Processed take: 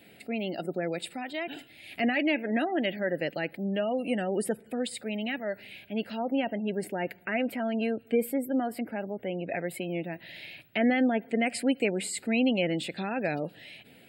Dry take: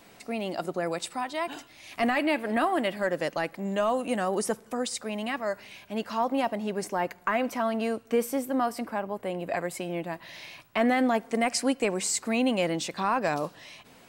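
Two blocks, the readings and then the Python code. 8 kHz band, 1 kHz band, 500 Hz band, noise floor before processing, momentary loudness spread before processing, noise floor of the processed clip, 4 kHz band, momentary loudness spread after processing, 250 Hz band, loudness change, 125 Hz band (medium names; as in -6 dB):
-7.0 dB, -7.0 dB, -2.0 dB, -55 dBFS, 9 LU, -56 dBFS, -1.5 dB, 10 LU, +1.0 dB, -1.5 dB, +1.0 dB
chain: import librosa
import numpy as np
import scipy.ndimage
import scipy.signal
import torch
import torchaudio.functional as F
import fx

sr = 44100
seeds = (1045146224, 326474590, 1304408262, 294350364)

y = fx.spec_gate(x, sr, threshold_db=-30, keep='strong')
y = scipy.signal.sosfilt(scipy.signal.butter(2, 77.0, 'highpass', fs=sr, output='sos'), y)
y = fx.fixed_phaser(y, sr, hz=2600.0, stages=4)
y = y * librosa.db_to_amplitude(1.5)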